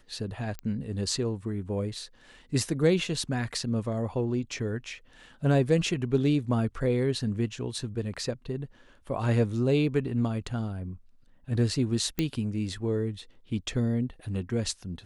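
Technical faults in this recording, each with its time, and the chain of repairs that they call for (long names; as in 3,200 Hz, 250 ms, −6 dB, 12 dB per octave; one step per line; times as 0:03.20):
0:00.59: click −22 dBFS
0:12.19: click −13 dBFS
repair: click removal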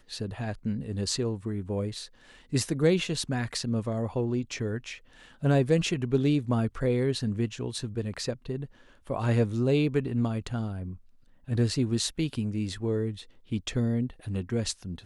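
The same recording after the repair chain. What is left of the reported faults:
none of them is left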